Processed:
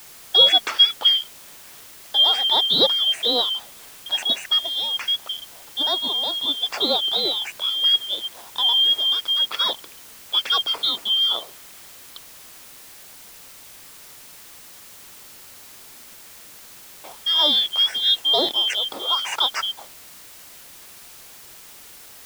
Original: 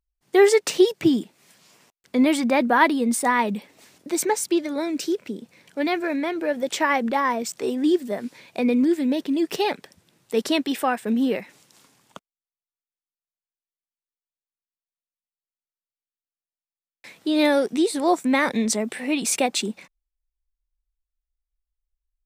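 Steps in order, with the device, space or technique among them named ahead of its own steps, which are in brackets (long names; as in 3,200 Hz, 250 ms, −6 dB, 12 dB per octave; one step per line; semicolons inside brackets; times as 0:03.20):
split-band scrambled radio (band-splitting scrambler in four parts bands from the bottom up 2413; band-pass filter 390–3,100 Hz; white noise bed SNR 20 dB)
level +4.5 dB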